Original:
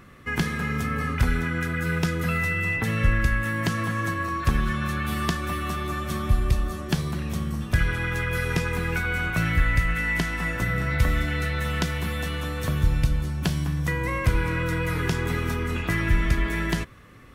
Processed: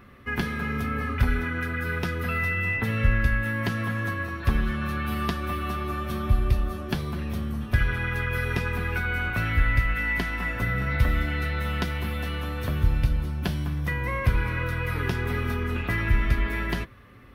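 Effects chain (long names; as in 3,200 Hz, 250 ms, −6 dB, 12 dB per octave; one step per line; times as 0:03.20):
parametric band 7,400 Hz −12.5 dB 0.82 octaves
notch comb filter 160 Hz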